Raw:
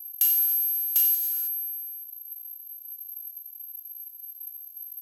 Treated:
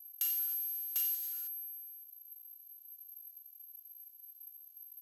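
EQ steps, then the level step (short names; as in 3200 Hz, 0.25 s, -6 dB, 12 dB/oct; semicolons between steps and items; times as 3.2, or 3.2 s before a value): low shelf 300 Hz -8.5 dB; high shelf 9400 Hz -8 dB; -6.5 dB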